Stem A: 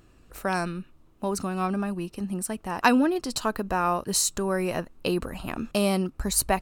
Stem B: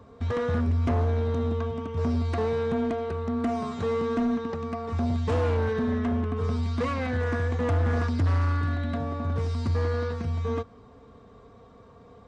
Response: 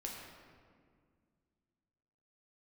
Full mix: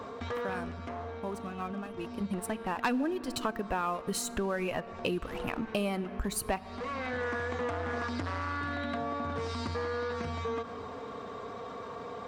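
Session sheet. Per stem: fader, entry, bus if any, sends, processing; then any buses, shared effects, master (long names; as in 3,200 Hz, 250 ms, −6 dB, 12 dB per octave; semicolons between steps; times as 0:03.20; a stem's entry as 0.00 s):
0:01.83 −17 dB → 0:02.32 −5.5 dB, 0.00 s, send −14.5 dB, reverb reduction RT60 1.4 s; high shelf with overshoot 3,700 Hz −8 dB, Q 1.5; leveller curve on the samples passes 2
+0.5 dB, 0.00 s, send −12.5 dB, high-pass filter 650 Hz 6 dB per octave; high-shelf EQ 5,300 Hz −5.5 dB; envelope flattener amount 50%; automatic ducking −17 dB, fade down 1.25 s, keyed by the first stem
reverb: on, RT60 2.0 s, pre-delay 7 ms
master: downward compressor 3 to 1, threshold −31 dBFS, peak gain reduction 12 dB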